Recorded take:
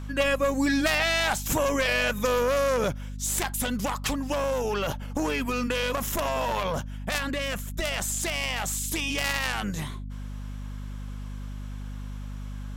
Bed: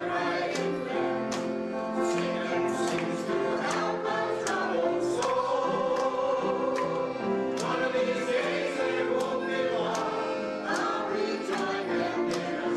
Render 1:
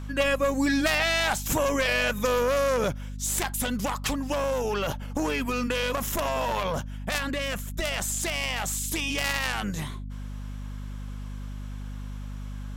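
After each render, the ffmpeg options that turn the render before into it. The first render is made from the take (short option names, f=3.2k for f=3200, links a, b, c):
-af anull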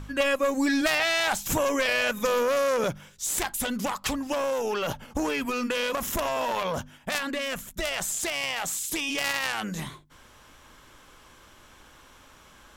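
-af "bandreject=f=50:t=h:w=4,bandreject=f=100:t=h:w=4,bandreject=f=150:t=h:w=4,bandreject=f=200:t=h:w=4,bandreject=f=250:t=h:w=4"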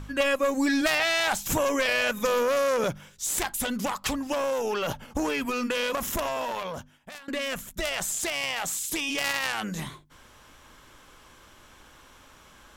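-filter_complex "[0:a]asplit=2[a][b];[a]atrim=end=7.28,asetpts=PTS-STARTPTS,afade=t=out:st=6.07:d=1.21:silence=0.0944061[c];[b]atrim=start=7.28,asetpts=PTS-STARTPTS,afade=t=in:d=0.004:c=hsin:silence=0.0944061[d];[c][d]concat=n=2:v=0:a=1"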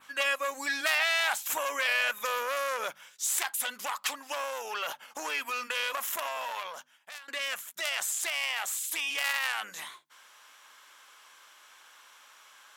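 -af "highpass=1k,adynamicequalizer=threshold=0.00501:dfrequency=5600:dqfactor=1.2:tfrequency=5600:tqfactor=1.2:attack=5:release=100:ratio=0.375:range=3:mode=cutabove:tftype=bell"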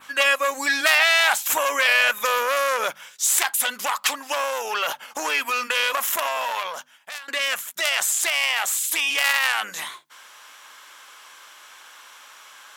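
-af "volume=9.5dB"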